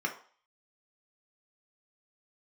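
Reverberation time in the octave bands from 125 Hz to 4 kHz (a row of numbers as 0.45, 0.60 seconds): 0.30, 0.35, 0.45, 0.50, 0.45, 0.50 seconds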